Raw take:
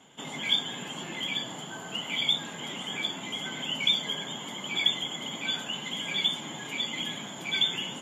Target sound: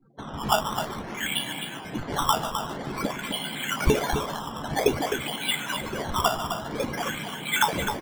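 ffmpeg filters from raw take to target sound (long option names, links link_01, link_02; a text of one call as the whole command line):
ffmpeg -i in.wav -filter_complex "[0:a]equalizer=frequency=750:width=0.34:gain=-7,asplit=2[link_01][link_02];[link_02]adelay=143,lowpass=frequency=2800:poles=1,volume=-8.5dB,asplit=2[link_03][link_04];[link_04]adelay=143,lowpass=frequency=2800:poles=1,volume=0.52,asplit=2[link_05][link_06];[link_06]adelay=143,lowpass=frequency=2800:poles=1,volume=0.52,asplit=2[link_07][link_08];[link_08]adelay=143,lowpass=frequency=2800:poles=1,volume=0.52,asplit=2[link_09][link_10];[link_10]adelay=143,lowpass=frequency=2800:poles=1,volume=0.52,asplit=2[link_11][link_12];[link_12]adelay=143,lowpass=frequency=2800:poles=1,volume=0.52[link_13];[link_03][link_05][link_07][link_09][link_11][link_13]amix=inputs=6:normalize=0[link_14];[link_01][link_14]amix=inputs=2:normalize=0,acrusher=samples=14:mix=1:aa=0.000001:lfo=1:lforange=14:lforate=0.51,asplit=2[link_15][link_16];[link_16]adelay=14,volume=-11dB[link_17];[link_15][link_17]amix=inputs=2:normalize=0,afftdn=noise_reduction=35:noise_floor=-52,asplit=2[link_18][link_19];[link_19]aecho=0:1:259:0.398[link_20];[link_18][link_20]amix=inputs=2:normalize=0,volume=5.5dB" out.wav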